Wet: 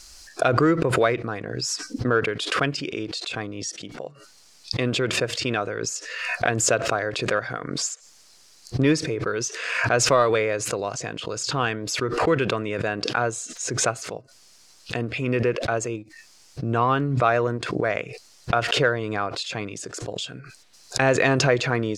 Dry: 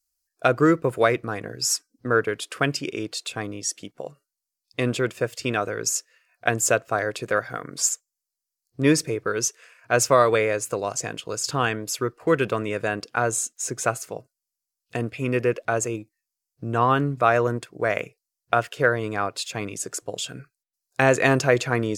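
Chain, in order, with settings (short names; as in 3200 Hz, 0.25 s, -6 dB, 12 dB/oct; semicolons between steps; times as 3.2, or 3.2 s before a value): bell 4100 Hz +4 dB 0.92 oct; in parallel at -12 dB: hard clip -14.5 dBFS, distortion -12 dB; on the sum: air absorption 77 m; backwards sustainer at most 41 dB/s; gain -3 dB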